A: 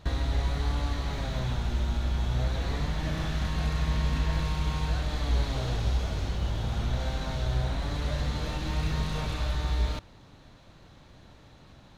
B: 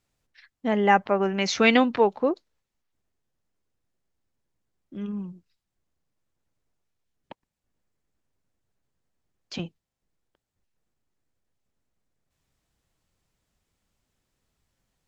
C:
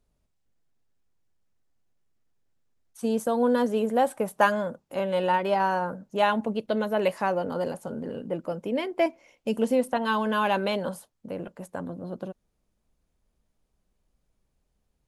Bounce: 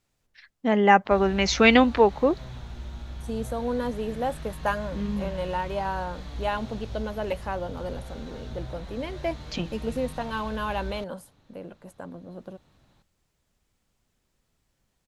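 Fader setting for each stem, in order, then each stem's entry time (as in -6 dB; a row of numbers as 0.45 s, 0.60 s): -9.5 dB, +2.0 dB, -5.5 dB; 1.05 s, 0.00 s, 0.25 s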